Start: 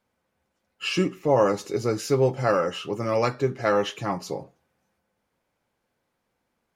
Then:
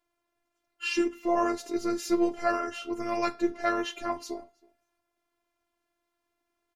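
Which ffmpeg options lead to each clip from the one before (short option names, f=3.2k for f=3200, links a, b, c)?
-filter_complex "[0:a]afftfilt=real='hypot(re,im)*cos(PI*b)':imag='0':win_size=512:overlap=0.75,asplit=2[a][b];[b]adelay=320.7,volume=-26dB,highshelf=f=4k:g=-7.22[c];[a][c]amix=inputs=2:normalize=0"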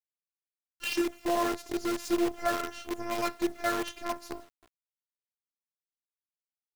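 -af "acrusher=bits=6:dc=4:mix=0:aa=0.000001,volume=-2.5dB"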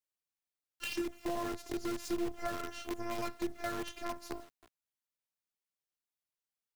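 -filter_complex "[0:a]acrossover=split=210[a][b];[b]acompressor=threshold=-38dB:ratio=3[c];[a][c]amix=inputs=2:normalize=0"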